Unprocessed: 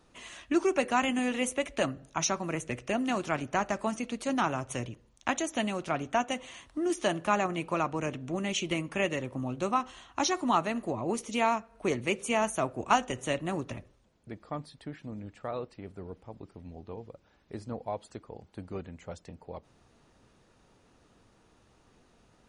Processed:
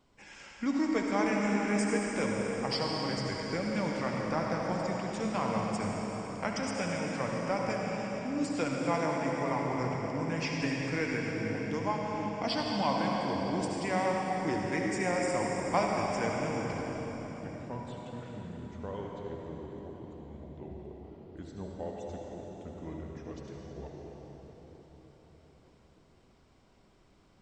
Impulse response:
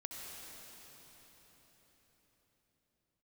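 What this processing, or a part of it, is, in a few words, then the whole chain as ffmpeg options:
slowed and reverbed: -filter_complex "[0:a]asetrate=36162,aresample=44100[a];[1:a]atrim=start_sample=2205[b];[a][b]afir=irnorm=-1:irlink=0"

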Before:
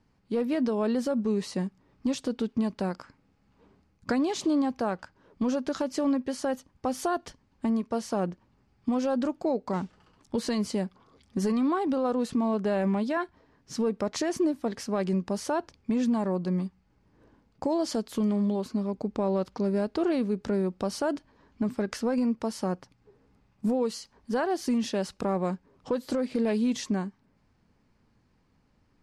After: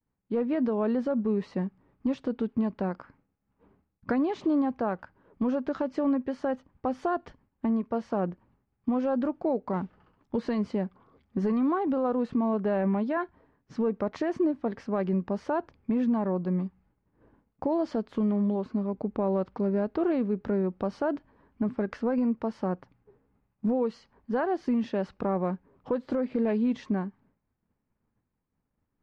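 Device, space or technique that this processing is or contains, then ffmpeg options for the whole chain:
hearing-loss simulation: -af "lowpass=2k,agate=range=-33dB:threshold=-57dB:ratio=3:detection=peak"

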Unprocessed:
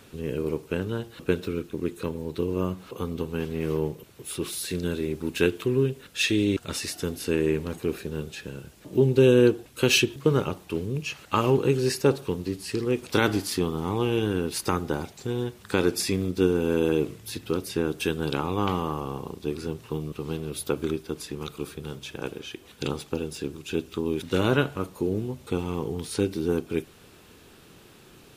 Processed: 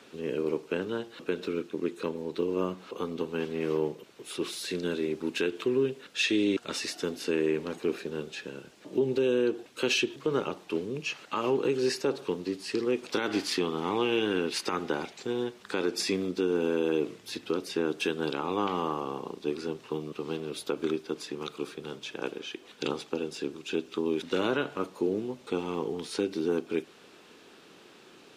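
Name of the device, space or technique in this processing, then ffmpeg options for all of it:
DJ mixer with the lows and highs turned down: -filter_complex "[0:a]asettb=1/sr,asplit=3[a][b][c];[a]atrim=end=13.304[d];[b]atrim=start=13.3:end=15.23,asetpts=PTS-STARTPTS,afade=t=in:d=0.004:c=qsin,afade=t=out:st=1.926:d=0.004:c=qsin,equalizer=f=2.4k:t=o:w=1.4:g=5.5[e];[c]atrim=start=15.226[f];[d][e]acrossfade=d=0.004:c1=hsin:c2=qsin[g];[g][f]acrossfade=d=0.004:c1=qsin:c2=hsin,acrossover=split=200 7300:gain=0.0708 1 0.178[h][i][j];[h][i][j]amix=inputs=3:normalize=0,alimiter=limit=-17dB:level=0:latency=1:release=121"

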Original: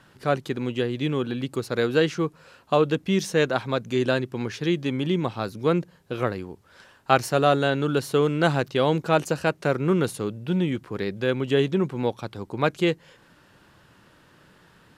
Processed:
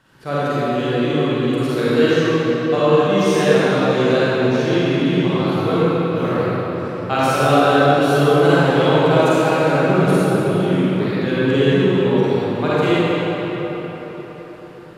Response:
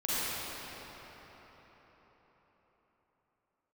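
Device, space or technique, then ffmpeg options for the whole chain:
cathedral: -filter_complex "[1:a]atrim=start_sample=2205[a];[0:a][a]afir=irnorm=-1:irlink=0,volume=-2dB"

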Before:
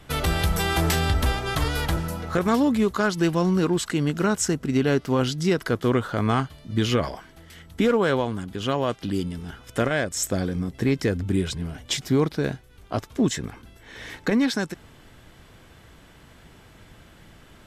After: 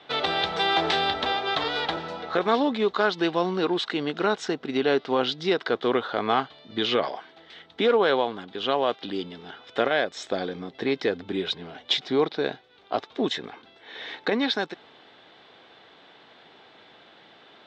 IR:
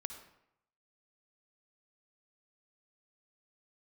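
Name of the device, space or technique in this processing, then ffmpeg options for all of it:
phone earpiece: -af "highpass=350,equalizer=f=430:t=q:w=4:g=3,equalizer=f=770:t=q:w=4:g=6,equalizer=f=3.7k:t=q:w=4:g=9,lowpass=f=4.4k:w=0.5412,lowpass=f=4.4k:w=1.3066"

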